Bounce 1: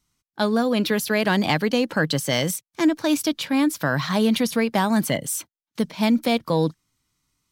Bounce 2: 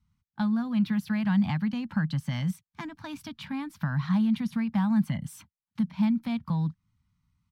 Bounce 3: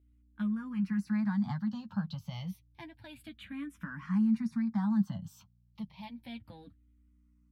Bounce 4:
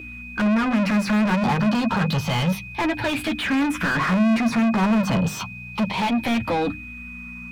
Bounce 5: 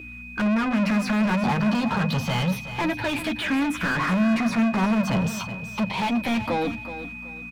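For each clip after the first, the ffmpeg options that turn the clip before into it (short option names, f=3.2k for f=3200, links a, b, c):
-af "equalizer=f=80:w=0.7:g=12.5,acompressor=threshold=-25dB:ratio=2,firequalizer=gain_entry='entry(130,0);entry(200,6);entry(390,-27);entry(840,-2);entry(6800,-16)':delay=0.05:min_phase=1,volume=-3.5dB"
-filter_complex "[0:a]flanger=delay=8.2:depth=2.8:regen=21:speed=0.66:shape=triangular,aeval=exprs='val(0)+0.001*(sin(2*PI*60*n/s)+sin(2*PI*2*60*n/s)/2+sin(2*PI*3*60*n/s)/3+sin(2*PI*4*60*n/s)/4+sin(2*PI*5*60*n/s)/5)':c=same,asplit=2[a][b];[b]afreqshift=-0.3[c];[a][c]amix=inputs=2:normalize=1,volume=-2dB"
-filter_complex "[0:a]asplit=2[a][b];[b]highpass=f=720:p=1,volume=43dB,asoftclip=type=tanh:threshold=-19dB[c];[a][c]amix=inputs=2:normalize=0,lowpass=f=1.3k:p=1,volume=-6dB,aeval=exprs='val(0)+0.00708*sin(2*PI*2500*n/s)':c=same,bandreject=f=50:t=h:w=6,bandreject=f=100:t=h:w=6,bandreject=f=150:t=h:w=6,bandreject=f=200:t=h:w=6,bandreject=f=250:t=h:w=6,bandreject=f=300:t=h:w=6,volume=7dB"
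-af "aecho=1:1:374|748|1122:0.251|0.0703|0.0197,volume=-2.5dB"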